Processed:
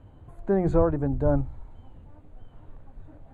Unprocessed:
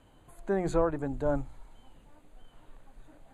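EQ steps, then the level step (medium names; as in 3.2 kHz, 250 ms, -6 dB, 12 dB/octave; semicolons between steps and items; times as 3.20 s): low-pass 3.5 kHz 6 dB/octave; tilt shelf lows +5.5 dB, about 1.5 kHz; peaking EQ 84 Hz +12.5 dB 1.2 oct; 0.0 dB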